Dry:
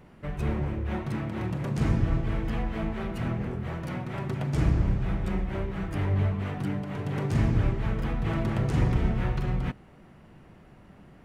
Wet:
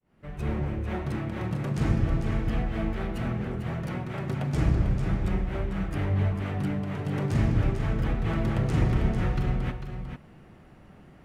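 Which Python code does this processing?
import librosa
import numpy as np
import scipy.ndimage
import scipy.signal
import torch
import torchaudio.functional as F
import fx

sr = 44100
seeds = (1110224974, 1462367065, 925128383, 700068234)

y = fx.fade_in_head(x, sr, length_s=0.55)
y = fx.notch(y, sr, hz=990.0, q=27.0)
y = y + 10.0 ** (-8.0 / 20.0) * np.pad(y, (int(447 * sr / 1000.0), 0))[:len(y)]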